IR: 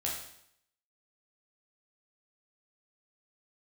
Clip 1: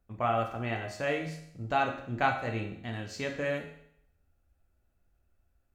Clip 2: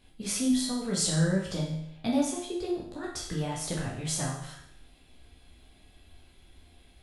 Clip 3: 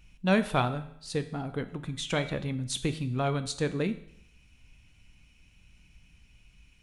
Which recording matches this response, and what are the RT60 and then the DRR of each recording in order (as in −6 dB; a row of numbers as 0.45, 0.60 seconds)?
2; 0.70, 0.70, 0.70 seconds; 2.0, −4.5, 9.5 decibels